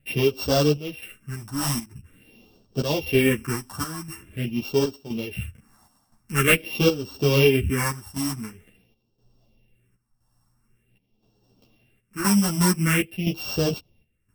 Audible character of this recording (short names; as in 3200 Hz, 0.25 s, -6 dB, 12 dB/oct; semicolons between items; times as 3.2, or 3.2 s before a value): a buzz of ramps at a fixed pitch in blocks of 16 samples; phasing stages 4, 0.46 Hz, lowest notch 410–2100 Hz; chopped level 0.98 Hz, depth 65%, duty 75%; a shimmering, thickened sound